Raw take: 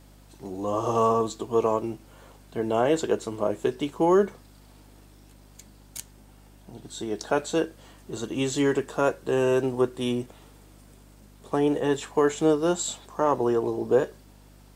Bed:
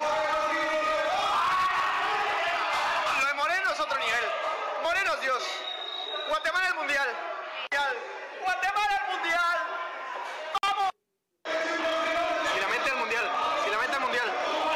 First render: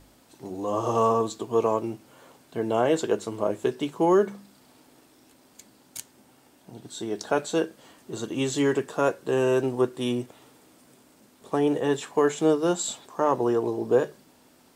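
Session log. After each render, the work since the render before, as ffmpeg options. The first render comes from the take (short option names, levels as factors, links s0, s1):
-af "bandreject=f=50:t=h:w=4,bandreject=f=100:t=h:w=4,bandreject=f=150:t=h:w=4,bandreject=f=200:t=h:w=4"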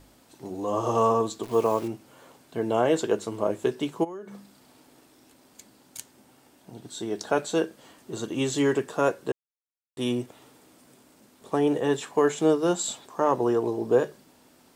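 -filter_complex "[0:a]asettb=1/sr,asplit=3[s0][s1][s2];[s0]atrim=end=1.434[s3];[s1]atrim=start=1.43:end=1.88,asetpts=PTS-STARTPTS,afade=t=in:d=0.004:c=qsin,afade=t=out:st=0.446:d=0.004:c=qsin,acrusher=bits=8:dc=4:mix=0:aa=0.000001[s4];[s2]atrim=start=1.876[s5];[s3][s4]acrossfade=d=0.004:c1=hsin:c2=qsin[s6];[s6][s5]acrossfade=d=0.004:c1=qsin:c2=hsin,asplit=3[s7][s8][s9];[s7]afade=t=out:st=4.03:d=0.02[s10];[s8]acompressor=threshold=0.0158:ratio=8:attack=3.2:release=140:knee=1:detection=peak,afade=t=in:st=4.03:d=0.02,afade=t=out:st=5.98:d=0.02[s11];[s9]afade=t=in:st=5.98:d=0.02[s12];[s10][s11][s12]amix=inputs=3:normalize=0,asplit=3[s13][s14][s15];[s13]atrim=end=9.32,asetpts=PTS-STARTPTS,afade=t=out:st=9.316:d=0.004:c=hsin[s16];[s14]atrim=start=9.32:end=9.97,asetpts=PTS-STARTPTS,volume=0[s17];[s15]atrim=start=9.97,asetpts=PTS-STARTPTS,afade=t=in:d=0.004:c=hsin[s18];[s16][s17][s18]concat=n=3:v=0:a=1"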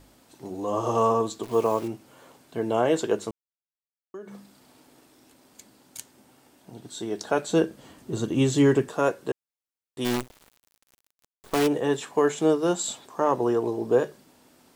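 -filter_complex "[0:a]asettb=1/sr,asplit=3[s0][s1][s2];[s0]atrim=end=7.494[s3];[s1]atrim=start=7.49:end=8.89,asetpts=PTS-STARTPTS,afade=t=in:d=0.004:c=qsin,afade=t=out:st=1.396:d=0.004:c=qsin,lowshelf=f=240:g=12[s4];[s2]atrim=start=8.886[s5];[s3][s4]acrossfade=d=0.004:c1=hsin:c2=qsin[s6];[s6][s5]acrossfade=d=0.004:c1=qsin:c2=hsin,asplit=3[s7][s8][s9];[s7]afade=t=out:st=10.04:d=0.02[s10];[s8]acrusher=bits=5:dc=4:mix=0:aa=0.000001,afade=t=in:st=10.04:d=0.02,afade=t=out:st=11.66:d=0.02[s11];[s9]afade=t=in:st=11.66:d=0.02[s12];[s10][s11][s12]amix=inputs=3:normalize=0,asplit=3[s13][s14][s15];[s13]atrim=end=3.31,asetpts=PTS-STARTPTS,afade=t=out:st=3.306:d=0.004:c=hsin[s16];[s14]atrim=start=3.31:end=4.14,asetpts=PTS-STARTPTS,volume=0[s17];[s15]atrim=start=4.14,asetpts=PTS-STARTPTS,afade=t=in:d=0.004:c=hsin[s18];[s16][s17][s18]concat=n=3:v=0:a=1"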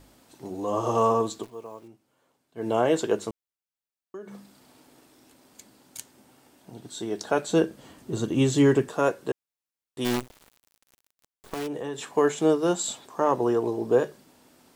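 -filter_complex "[0:a]asettb=1/sr,asplit=3[s0][s1][s2];[s0]atrim=end=10.194[s3];[s1]atrim=start=10.19:end=12.12,asetpts=PTS-STARTPTS,afade=t=in:d=0.004:c=qsin,afade=t=out:st=1.926:d=0.004:c=qsin,acompressor=threshold=0.0355:ratio=6:attack=3.2:release=140:knee=1:detection=peak[s4];[s2]atrim=start=12.116[s5];[s3][s4]acrossfade=d=0.004:c1=hsin:c2=qsin[s6];[s6][s5]acrossfade=d=0.004:c1=qsin:c2=hsin,asplit=3[s7][s8][s9];[s7]atrim=end=1.51,asetpts=PTS-STARTPTS,afade=t=out:st=1.39:d=0.12:silence=0.133352[s10];[s8]atrim=start=1.51:end=2.55,asetpts=PTS-STARTPTS,volume=0.133[s11];[s9]atrim=start=2.55,asetpts=PTS-STARTPTS,afade=t=in:d=0.12:silence=0.133352[s12];[s10][s11][s12]concat=n=3:v=0:a=1"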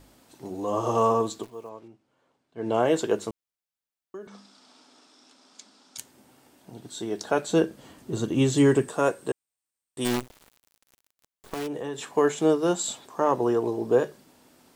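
-filter_complex "[0:a]asettb=1/sr,asplit=3[s0][s1][s2];[s0]atrim=end=1.694[s3];[s1]atrim=start=1.69:end=2.8,asetpts=PTS-STARTPTS,afade=t=in:d=0.004:c=qsin,afade=t=out:st=1.106:d=0.004:c=qsin,adynamicsmooth=sensitivity=7.5:basefreq=6400[s4];[s2]atrim=start=2.796[s5];[s3][s4]acrossfade=d=0.004:c1=hsin:c2=qsin[s6];[s6][s5]acrossfade=d=0.004:c1=qsin:c2=hsin,asettb=1/sr,asplit=3[s7][s8][s9];[s7]atrim=end=4.274[s10];[s8]atrim=start=4.27:end=5.98,asetpts=PTS-STARTPTS,afade=t=in:d=0.004:c=qsin,afade=t=out:st=1.706:d=0.004:c=qsin,highpass=f=220:w=0.5412,highpass=f=220:w=1.3066,equalizer=f=340:t=q:w=4:g=-7,equalizer=f=510:t=q:w=4:g=-5,equalizer=f=1300:t=q:w=4:g=5,equalizer=f=1900:t=q:w=4:g=-3,equalizer=f=3600:t=q:w=4:g=6,equalizer=f=5300:t=q:w=4:g=9,lowpass=f=8200:w=0.5412,lowpass=f=8200:w=1.3066[s11];[s9]atrim=start=5.976[s12];[s10][s11]acrossfade=d=0.004:c1=hsin:c2=qsin[s13];[s13][s12]acrossfade=d=0.004:c1=qsin:c2=hsin,asettb=1/sr,asplit=3[s14][s15][s16];[s14]atrim=end=8.574[s17];[s15]atrim=start=8.57:end=10.08,asetpts=PTS-STARTPTS,afade=t=in:d=0.004:c=qsin,afade=t=out:st=1.506:d=0.004:c=qsin,equalizer=f=8500:t=o:w=0.21:g=14[s18];[s16]atrim=start=10.076[s19];[s17][s18]acrossfade=d=0.004:c1=hsin:c2=qsin[s20];[s20][s19]acrossfade=d=0.004:c1=qsin:c2=hsin"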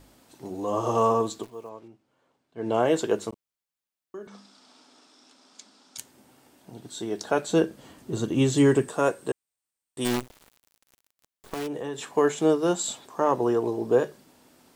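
-filter_complex "[0:a]asettb=1/sr,asplit=3[s0][s1][s2];[s0]atrim=end=3.294[s3];[s1]atrim=start=3.29:end=4.23,asetpts=PTS-STARTPTS,afade=t=in:d=0.004:c=qsin,afade=t=out:st=0.936:d=0.004:c=qsin,asplit=2[s4][s5];[s5]adelay=34,volume=0.316[s6];[s4][s6]amix=inputs=2:normalize=0,atrim=end_sample=41454[s7];[s2]atrim=start=4.226[s8];[s3][s7]acrossfade=d=0.004:c1=hsin:c2=qsin[s9];[s9][s8]acrossfade=d=0.004:c1=qsin:c2=hsin"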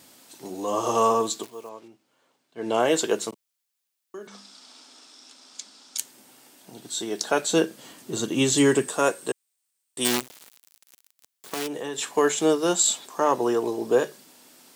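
-af "highpass=170,highshelf=f=2000:g=10.5"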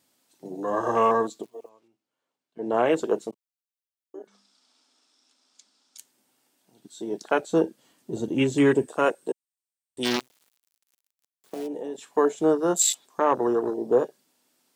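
-af "afwtdn=0.0398"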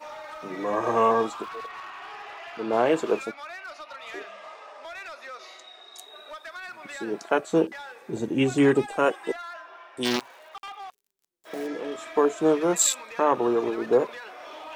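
-filter_complex "[1:a]volume=0.224[s0];[0:a][s0]amix=inputs=2:normalize=0"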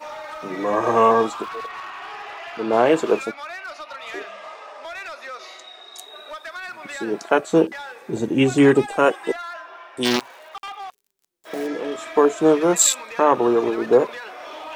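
-af "volume=1.88"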